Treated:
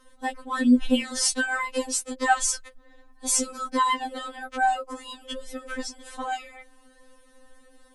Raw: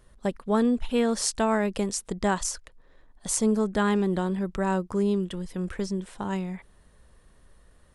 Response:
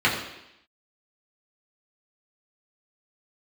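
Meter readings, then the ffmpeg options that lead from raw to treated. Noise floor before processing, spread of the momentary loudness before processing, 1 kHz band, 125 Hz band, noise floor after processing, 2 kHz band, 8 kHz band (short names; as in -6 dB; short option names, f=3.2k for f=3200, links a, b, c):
-59 dBFS, 9 LU, +6.0 dB, under -20 dB, -57 dBFS, +7.0 dB, +5.0 dB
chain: -af "lowshelf=f=240:t=q:w=3:g=-7,afftfilt=real='re*3.46*eq(mod(b,12),0)':imag='im*3.46*eq(mod(b,12),0)':win_size=2048:overlap=0.75,volume=7.5dB"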